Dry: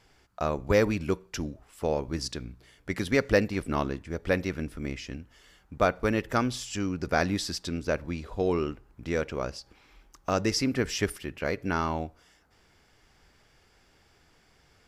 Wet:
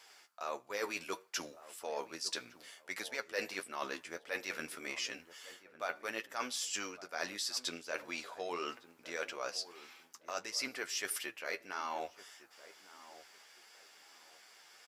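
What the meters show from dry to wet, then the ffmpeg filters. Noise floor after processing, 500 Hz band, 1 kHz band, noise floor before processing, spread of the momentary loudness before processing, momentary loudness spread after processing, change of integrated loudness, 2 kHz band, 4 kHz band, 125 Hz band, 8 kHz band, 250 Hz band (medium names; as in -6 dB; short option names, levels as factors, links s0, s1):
-63 dBFS, -14.5 dB, -9.0 dB, -64 dBFS, 13 LU, 19 LU, -10.5 dB, -6.5 dB, -3.0 dB, -32.0 dB, -1.5 dB, -20.0 dB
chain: -filter_complex "[0:a]highpass=690,highshelf=f=3800:g=7,areverse,acompressor=threshold=0.0126:ratio=8,areverse,flanger=delay=8.4:depth=4:regen=34:speed=1.6:shape=sinusoidal,asplit=2[s0][s1];[s1]adelay=1157,lowpass=f=1100:p=1,volume=0.178,asplit=2[s2][s3];[s3]adelay=1157,lowpass=f=1100:p=1,volume=0.31,asplit=2[s4][s5];[s5]adelay=1157,lowpass=f=1100:p=1,volume=0.31[s6];[s0][s2][s4][s6]amix=inputs=4:normalize=0,volume=2.11"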